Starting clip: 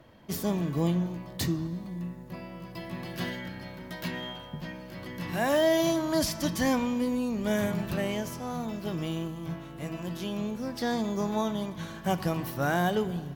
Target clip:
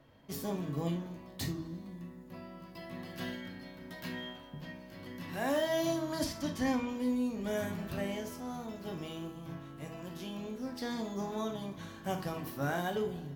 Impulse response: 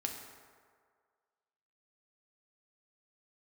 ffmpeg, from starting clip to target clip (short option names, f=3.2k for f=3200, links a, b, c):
-filter_complex "[0:a]asettb=1/sr,asplit=3[a][b][c];[a]atrim=end=6.244[d];[b]atrim=start=6.24:end=6.89,asetpts=PTS-STARTPTS,afade=t=in:d=0.004:c=qsin,afade=t=out:st=0.646:d=0.004:c=qsin,highshelf=f=7k:g=-8.5[e];[c]atrim=start=6.886[f];[d][e]acrossfade=d=0.004:c1=hsin:c2=qsin[g];[g][f]acrossfade=d=0.004:c1=qsin:c2=hsin[h];[1:a]atrim=start_sample=2205,atrim=end_sample=3528[i];[h][i]afir=irnorm=-1:irlink=0,volume=-6.5dB"